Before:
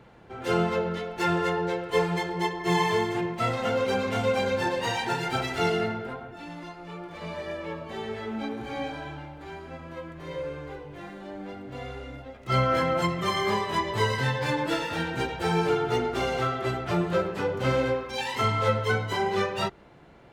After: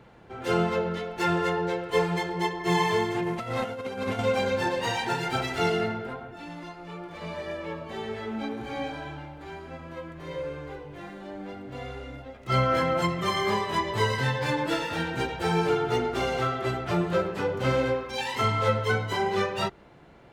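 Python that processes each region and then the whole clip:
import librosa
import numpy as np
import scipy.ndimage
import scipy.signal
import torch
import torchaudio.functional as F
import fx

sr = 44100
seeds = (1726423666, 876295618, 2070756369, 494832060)

y = fx.chain(x, sr, fx.cvsd(bps=64000),
    fx.high_shelf(hz=6000.0, db=-8.5),
    fx.over_compress(threshold_db=-30.0, ratio=-0.5), at=(3.23, 4.19))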